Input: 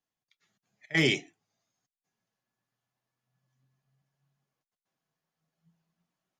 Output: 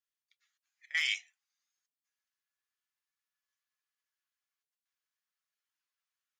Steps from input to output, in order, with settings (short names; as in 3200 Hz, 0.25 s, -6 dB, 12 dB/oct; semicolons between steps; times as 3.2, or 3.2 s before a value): HPF 1300 Hz 24 dB/oct; gain -3.5 dB